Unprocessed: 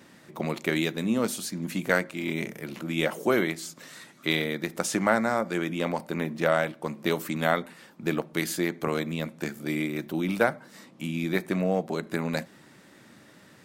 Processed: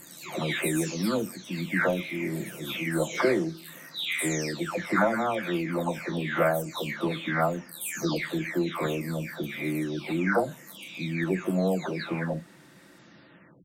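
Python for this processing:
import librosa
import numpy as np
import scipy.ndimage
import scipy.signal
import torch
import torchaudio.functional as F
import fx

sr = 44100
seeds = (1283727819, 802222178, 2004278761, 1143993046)

y = fx.spec_delay(x, sr, highs='early', ms=657)
y = y * librosa.db_to_amplitude(1.5)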